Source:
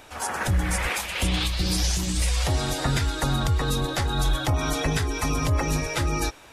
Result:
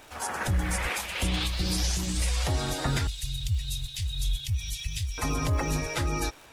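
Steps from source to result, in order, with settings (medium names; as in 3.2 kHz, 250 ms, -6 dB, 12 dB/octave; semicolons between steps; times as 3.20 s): 3.07–5.18 s: elliptic band-stop 110–2700 Hz, stop band 40 dB; crackle 280 per s -38 dBFS; trim -3.5 dB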